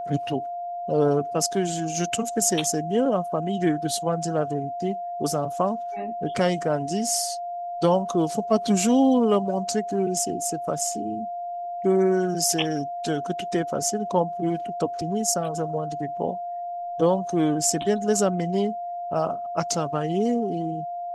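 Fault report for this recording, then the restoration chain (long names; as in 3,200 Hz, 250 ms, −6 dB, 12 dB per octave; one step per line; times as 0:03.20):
whistle 700 Hz −29 dBFS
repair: notch filter 700 Hz, Q 30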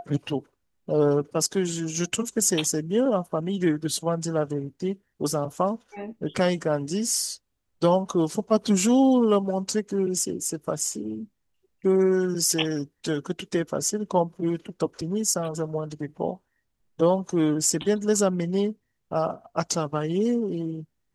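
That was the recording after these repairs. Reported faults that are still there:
none of them is left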